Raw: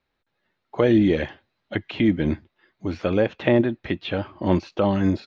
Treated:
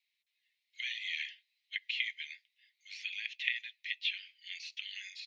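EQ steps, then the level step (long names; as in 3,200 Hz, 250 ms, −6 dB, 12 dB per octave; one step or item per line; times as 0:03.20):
Butterworth high-pass 2,000 Hz 72 dB per octave
0.0 dB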